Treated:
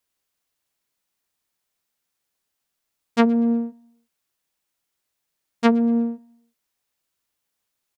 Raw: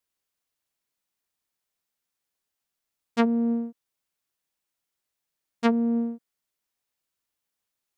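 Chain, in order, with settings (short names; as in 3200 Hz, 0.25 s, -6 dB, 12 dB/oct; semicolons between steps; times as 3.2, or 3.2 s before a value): feedback echo 0.119 s, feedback 42%, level -24 dB; gain +5 dB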